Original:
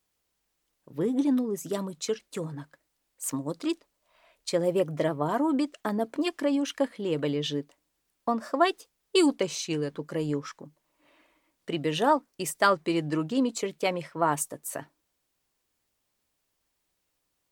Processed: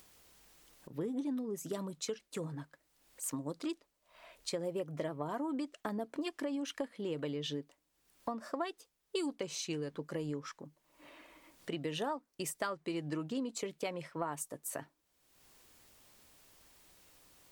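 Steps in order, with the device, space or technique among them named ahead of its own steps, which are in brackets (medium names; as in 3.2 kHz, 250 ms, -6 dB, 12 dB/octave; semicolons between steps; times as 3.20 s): upward and downward compression (upward compressor, threshold -41 dBFS; compression 5:1, threshold -30 dBFS, peak gain reduction 12.5 dB); trim -4.5 dB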